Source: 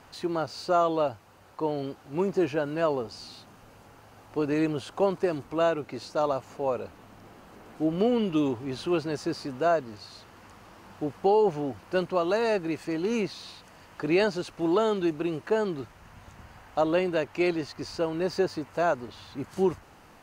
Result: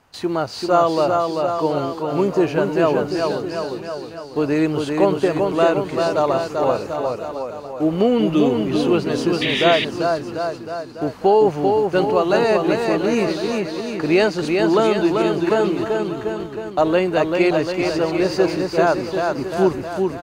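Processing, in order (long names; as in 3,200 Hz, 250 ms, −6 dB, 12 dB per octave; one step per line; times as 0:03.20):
noise gate −46 dBFS, range −13 dB
bouncing-ball delay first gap 390 ms, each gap 0.9×, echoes 5
sound drawn into the spectrogram noise, 0:09.41–0:09.85, 1,700–3,900 Hz −30 dBFS
level +7.5 dB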